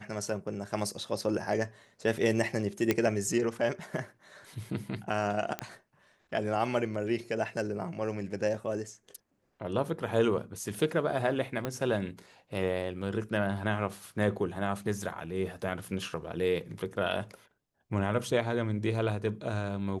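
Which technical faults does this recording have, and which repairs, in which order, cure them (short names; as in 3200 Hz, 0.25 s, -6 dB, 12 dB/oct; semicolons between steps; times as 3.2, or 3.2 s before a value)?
2.91 pop -11 dBFS
5.59 pop -17 dBFS
11.65 pop -18 dBFS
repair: de-click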